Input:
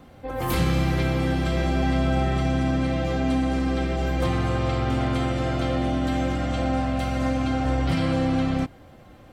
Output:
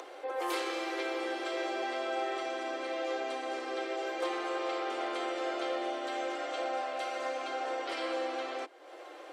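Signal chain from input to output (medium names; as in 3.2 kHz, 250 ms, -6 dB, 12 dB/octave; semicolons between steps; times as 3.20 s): in parallel at 0 dB: compression, threshold -33 dBFS, peak gain reduction 14.5 dB; on the sum: low-pass 8.8 kHz 12 dB/octave; upward compressor, threshold -27 dBFS; steep high-pass 330 Hz 72 dB/octave; trim -7.5 dB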